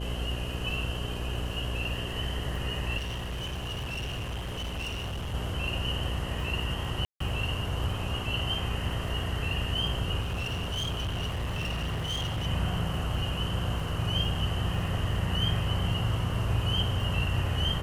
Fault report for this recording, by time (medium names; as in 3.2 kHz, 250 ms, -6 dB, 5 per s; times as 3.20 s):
buzz 60 Hz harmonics 11 -35 dBFS
crackle 35 per s -38 dBFS
2.97–5.35 s: clipped -31 dBFS
7.05–7.20 s: dropout 154 ms
10.20–12.47 s: clipped -28 dBFS
13.80 s: dropout 2.4 ms